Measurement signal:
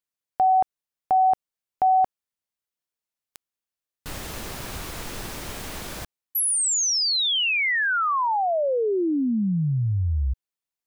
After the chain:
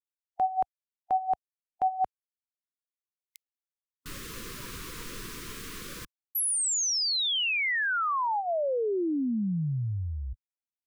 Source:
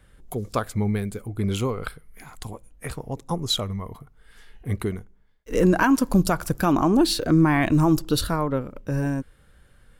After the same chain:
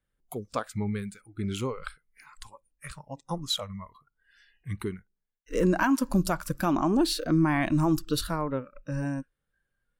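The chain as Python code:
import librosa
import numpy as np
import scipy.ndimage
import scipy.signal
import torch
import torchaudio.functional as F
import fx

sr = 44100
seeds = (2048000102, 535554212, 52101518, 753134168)

y = fx.noise_reduce_blind(x, sr, reduce_db=20)
y = fx.peak_eq(y, sr, hz=67.0, db=-6.5, octaves=1.1)
y = y * 10.0 ** (-5.0 / 20.0)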